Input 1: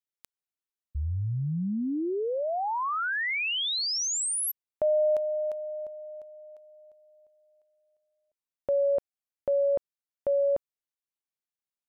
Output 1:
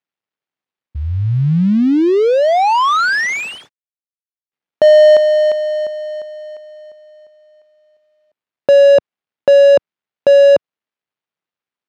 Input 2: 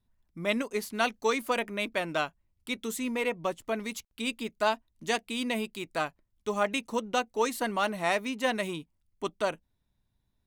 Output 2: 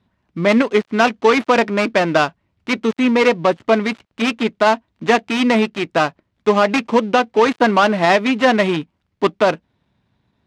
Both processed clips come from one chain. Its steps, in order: dead-time distortion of 0.14 ms; band-pass 120–3400 Hz; loudness maximiser +19 dB; trim -1.5 dB

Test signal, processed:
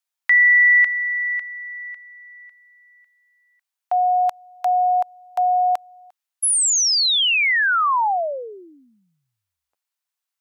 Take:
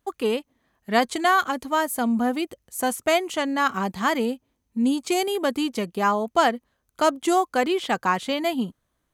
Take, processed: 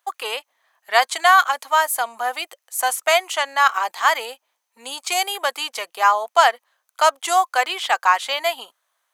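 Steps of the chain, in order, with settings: high-pass 710 Hz 24 dB/octave; trim +7 dB

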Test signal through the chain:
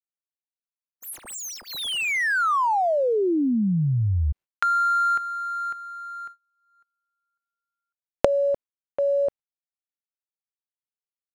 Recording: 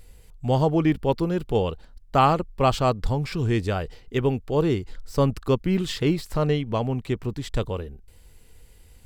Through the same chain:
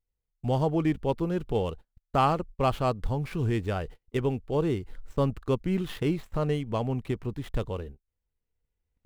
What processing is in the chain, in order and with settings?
median filter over 9 samples; recorder AGC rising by 5.6 dB/s; gate -35 dBFS, range -32 dB; trim -5 dB

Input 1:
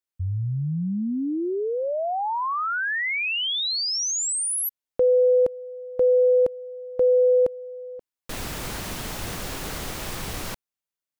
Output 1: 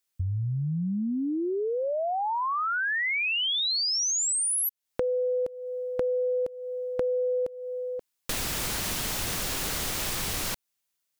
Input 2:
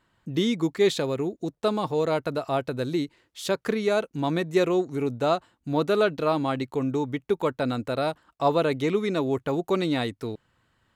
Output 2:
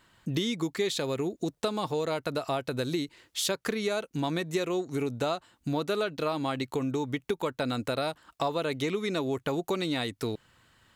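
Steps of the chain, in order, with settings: treble shelf 2.1 kHz +8 dB; compression 5:1, threshold -31 dBFS; trim +3.5 dB

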